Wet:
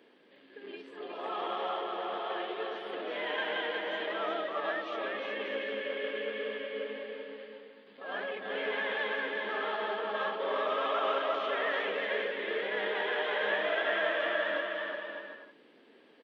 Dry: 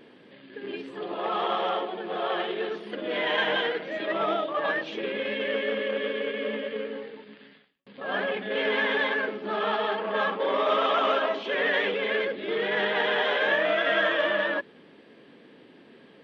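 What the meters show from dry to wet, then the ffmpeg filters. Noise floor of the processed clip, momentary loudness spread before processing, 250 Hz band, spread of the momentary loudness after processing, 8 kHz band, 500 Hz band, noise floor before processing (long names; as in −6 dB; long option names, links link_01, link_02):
−60 dBFS, 11 LU, −9.5 dB, 12 LU, can't be measured, −6.5 dB, −53 dBFS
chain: -filter_complex "[0:a]acrossover=split=3800[link_01][link_02];[link_02]acompressor=threshold=-47dB:ratio=4:attack=1:release=60[link_03];[link_01][link_03]amix=inputs=2:normalize=0,highpass=290,aecho=1:1:360|594|746.1|845|909.2:0.631|0.398|0.251|0.158|0.1,volume=-8dB"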